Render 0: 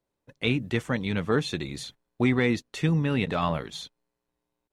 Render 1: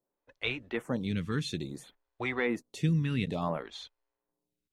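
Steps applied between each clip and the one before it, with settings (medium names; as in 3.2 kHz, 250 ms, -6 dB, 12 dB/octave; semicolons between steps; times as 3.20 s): lamp-driven phase shifter 0.58 Hz; trim -2.5 dB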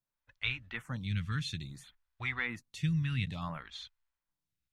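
FFT filter 110 Hz 0 dB, 420 Hz -25 dB, 1.4 kHz -4 dB, 3.4 kHz -4 dB, 5.8 kHz -6 dB, 9 kHz -8 dB; trim +3.5 dB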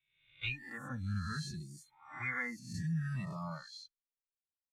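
reverse spectral sustain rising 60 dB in 0.89 s; spectral noise reduction 24 dB; endless flanger 2.7 ms -0.62 Hz; trim -1 dB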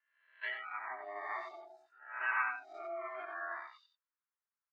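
ring modulator 510 Hz; Butterworth band-pass 1.3 kHz, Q 1.5; delay 91 ms -7 dB; trim +10 dB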